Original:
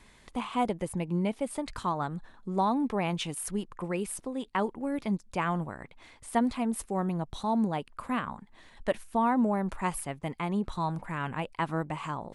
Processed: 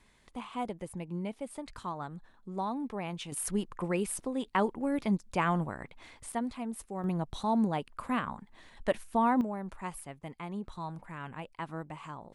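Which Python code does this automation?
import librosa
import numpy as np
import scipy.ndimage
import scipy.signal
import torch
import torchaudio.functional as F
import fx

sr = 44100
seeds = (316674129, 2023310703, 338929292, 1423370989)

y = fx.gain(x, sr, db=fx.steps((0.0, -7.5), (3.32, 1.0), (6.32, -7.5), (7.04, -0.5), (9.41, -8.5)))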